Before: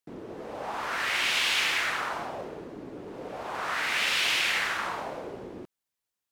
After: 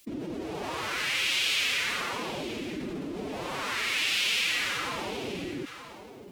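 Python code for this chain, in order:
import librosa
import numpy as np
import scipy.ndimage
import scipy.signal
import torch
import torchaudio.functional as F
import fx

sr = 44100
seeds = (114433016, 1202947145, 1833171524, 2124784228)

p1 = fx.band_shelf(x, sr, hz=900.0, db=-8.5, octaves=2.3)
p2 = fx.pitch_keep_formants(p1, sr, semitones=6.5)
p3 = p2 + fx.echo_single(p2, sr, ms=928, db=-23.0, dry=0)
y = fx.env_flatten(p3, sr, amount_pct=50)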